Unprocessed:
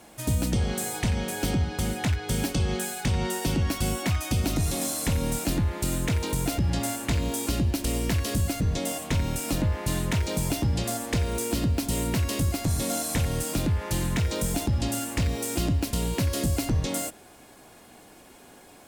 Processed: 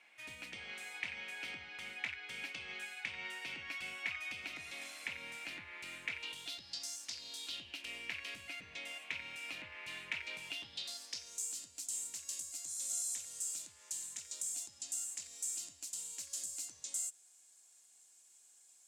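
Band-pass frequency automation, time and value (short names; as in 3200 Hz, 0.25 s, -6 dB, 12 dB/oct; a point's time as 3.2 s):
band-pass, Q 4.2
6.12 s 2300 Hz
6.96 s 6000 Hz
7.91 s 2400 Hz
10.38 s 2400 Hz
11.45 s 7300 Hz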